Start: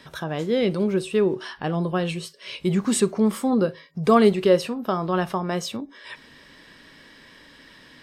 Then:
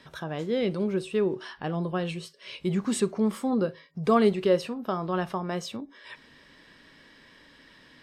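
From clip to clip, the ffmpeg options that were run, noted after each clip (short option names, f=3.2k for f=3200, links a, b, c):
-af "highshelf=f=8.5k:g=-6.5,volume=-5dB"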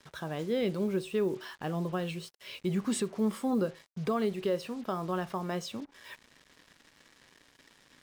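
-af "alimiter=limit=-18dB:level=0:latency=1:release=272,acrusher=bits=7:mix=0:aa=0.5,volume=-3dB"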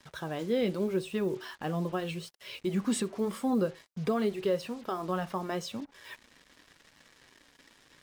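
-af "flanger=delay=1:depth=3.3:regen=-56:speed=0.86:shape=triangular,volume=5dB"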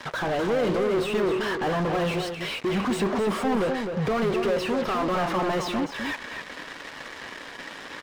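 -filter_complex "[0:a]asplit=2[a][b];[b]highpass=f=720:p=1,volume=35dB,asoftclip=type=tanh:threshold=-18dB[c];[a][c]amix=inputs=2:normalize=0,lowpass=f=1.4k:p=1,volume=-6dB,asplit=2[d][e];[e]adelay=256.6,volume=-6dB,highshelf=f=4k:g=-5.77[f];[d][f]amix=inputs=2:normalize=0"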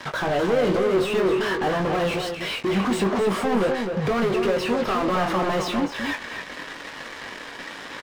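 -filter_complex "[0:a]asplit=2[a][b];[b]adelay=21,volume=-7dB[c];[a][c]amix=inputs=2:normalize=0,volume=2dB"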